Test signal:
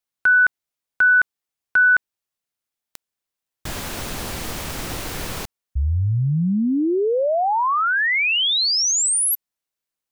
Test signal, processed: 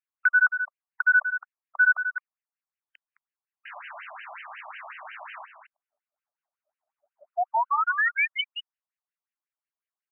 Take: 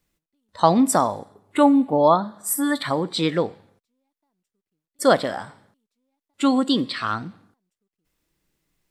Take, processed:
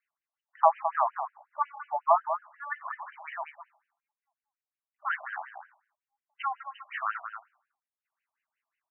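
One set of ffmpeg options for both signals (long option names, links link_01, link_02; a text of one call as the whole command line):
ffmpeg -i in.wav -af "aecho=1:1:213:0.335,afftfilt=real='re*between(b*sr/1024,830*pow(2200/830,0.5+0.5*sin(2*PI*5.5*pts/sr))/1.41,830*pow(2200/830,0.5+0.5*sin(2*PI*5.5*pts/sr))*1.41)':imag='im*between(b*sr/1024,830*pow(2200/830,0.5+0.5*sin(2*PI*5.5*pts/sr))/1.41,830*pow(2200/830,0.5+0.5*sin(2*PI*5.5*pts/sr))*1.41)':win_size=1024:overlap=0.75,volume=-2.5dB" out.wav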